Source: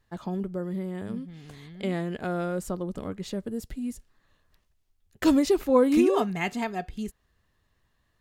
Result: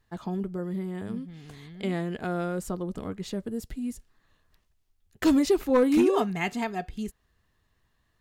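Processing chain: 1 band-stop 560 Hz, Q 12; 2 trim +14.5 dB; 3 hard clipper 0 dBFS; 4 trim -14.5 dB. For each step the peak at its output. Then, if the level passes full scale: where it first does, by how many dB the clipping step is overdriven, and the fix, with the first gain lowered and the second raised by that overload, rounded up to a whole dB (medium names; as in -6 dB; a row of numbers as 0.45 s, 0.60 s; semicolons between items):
-8.0 dBFS, +6.5 dBFS, 0.0 dBFS, -14.5 dBFS; step 2, 6.5 dB; step 2 +7.5 dB, step 4 -7.5 dB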